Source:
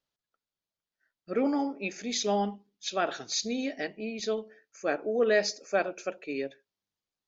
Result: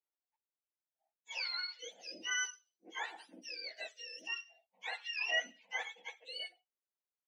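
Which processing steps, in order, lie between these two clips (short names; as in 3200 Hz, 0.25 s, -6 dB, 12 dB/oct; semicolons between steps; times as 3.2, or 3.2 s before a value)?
spectrum mirrored in octaves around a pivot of 1100 Hz; Bessel high-pass 810 Hz, order 4; gain -6 dB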